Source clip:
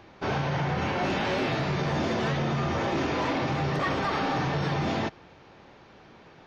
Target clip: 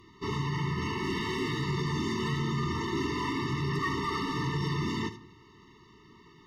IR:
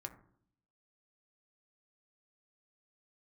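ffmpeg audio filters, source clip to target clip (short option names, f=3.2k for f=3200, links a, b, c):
-filter_complex "[0:a]aemphasis=mode=production:type=cd,asoftclip=type=hard:threshold=-23dB,asplit=2[a][b];[1:a]atrim=start_sample=2205,highshelf=f=4.1k:g=8.5,adelay=77[c];[b][c]afir=irnorm=-1:irlink=0,volume=-10.5dB[d];[a][d]amix=inputs=2:normalize=0,afftfilt=real='re*eq(mod(floor(b*sr/1024/440),2),0)':imag='im*eq(mod(floor(b*sr/1024/440),2),0)':win_size=1024:overlap=0.75,volume=-2dB"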